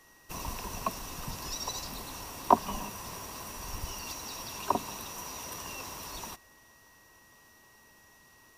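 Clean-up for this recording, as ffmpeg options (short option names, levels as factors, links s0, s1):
-af "bandreject=f=1900:w=30"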